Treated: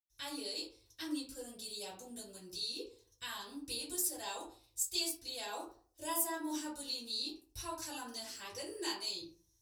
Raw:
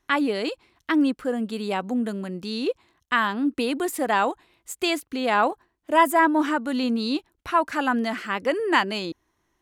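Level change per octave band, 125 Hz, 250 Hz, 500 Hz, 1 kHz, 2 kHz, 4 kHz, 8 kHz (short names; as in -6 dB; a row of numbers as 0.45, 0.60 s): n/a, -21.0 dB, -21.0 dB, -23.0 dB, -23.0 dB, -7.0 dB, +1.0 dB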